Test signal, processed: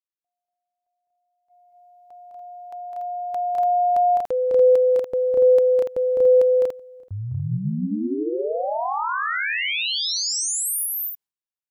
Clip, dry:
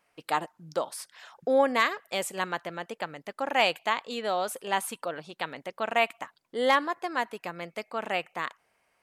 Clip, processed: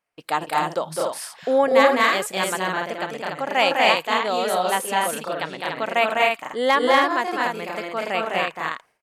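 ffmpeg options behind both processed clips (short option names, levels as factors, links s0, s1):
-filter_complex "[0:a]agate=range=0.178:threshold=0.00141:ratio=16:detection=peak,asplit=2[s0][s1];[s1]aecho=0:1:207|239.1|288.6:0.708|0.891|0.631[s2];[s0][s2]amix=inputs=2:normalize=0,volume=1.58"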